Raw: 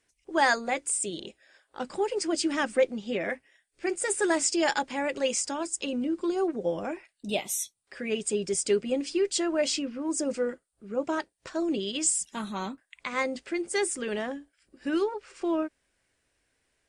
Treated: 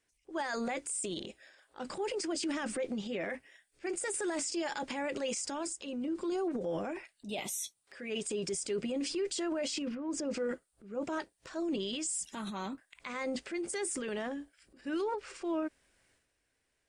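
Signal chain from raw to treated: 7.57–8.49 s: bass shelf 150 Hz -8 dB; 9.94–10.38 s: low-pass 2.6 kHz -> 6.1 kHz 12 dB/octave; transient shaper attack -3 dB, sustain +9 dB; peak limiter -21.5 dBFS, peak gain reduction 11 dB; 5.73–6.14 s: upward expansion 1.5:1, over -45 dBFS; trim -5.5 dB

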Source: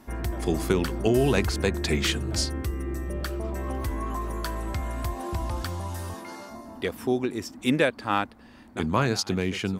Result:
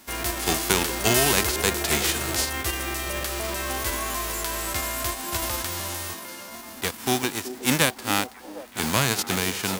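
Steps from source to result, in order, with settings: formants flattened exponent 0.3; repeats whose band climbs or falls 377 ms, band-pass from 380 Hz, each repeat 0.7 oct, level -8.5 dB; trim +1 dB

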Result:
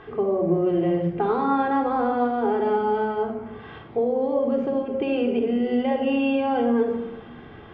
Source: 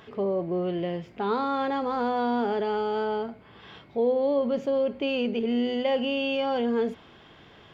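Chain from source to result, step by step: low-pass 2 kHz 12 dB/octave; compression, threshold -27 dBFS, peak gain reduction 7.5 dB; simulated room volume 3800 m³, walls furnished, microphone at 3.7 m; trim +4.5 dB

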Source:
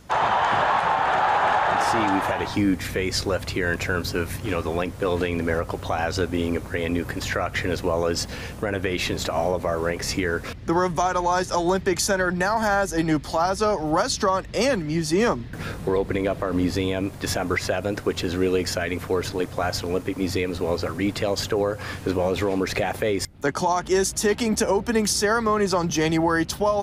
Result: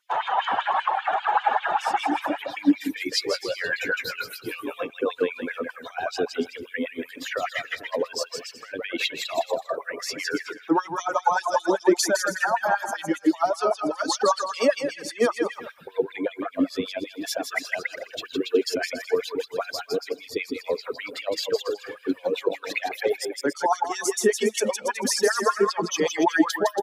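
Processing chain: expander on every frequency bin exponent 1.5; bouncing-ball echo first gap 160 ms, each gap 0.75×, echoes 5; reverb removal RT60 1.2 s; LFO high-pass sine 5.1 Hz 260–3300 Hz; 3.22–4.90 s: doubling 17 ms -7 dB

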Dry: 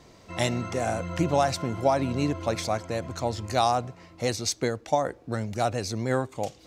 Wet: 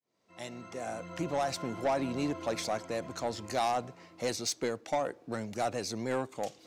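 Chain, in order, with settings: fade-in on the opening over 1.85 s; high-pass 180 Hz 12 dB/octave; saturation -20.5 dBFS, distortion -12 dB; trim -3 dB

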